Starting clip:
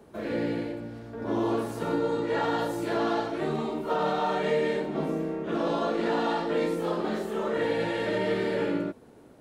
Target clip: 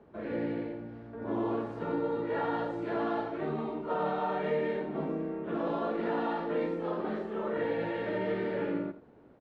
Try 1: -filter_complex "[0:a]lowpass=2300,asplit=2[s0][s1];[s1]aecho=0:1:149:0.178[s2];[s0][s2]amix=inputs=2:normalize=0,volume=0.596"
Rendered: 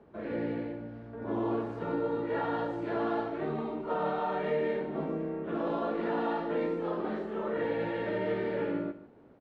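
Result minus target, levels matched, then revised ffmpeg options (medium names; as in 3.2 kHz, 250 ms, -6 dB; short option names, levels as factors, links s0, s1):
echo 65 ms late
-filter_complex "[0:a]lowpass=2300,asplit=2[s0][s1];[s1]aecho=0:1:84:0.178[s2];[s0][s2]amix=inputs=2:normalize=0,volume=0.596"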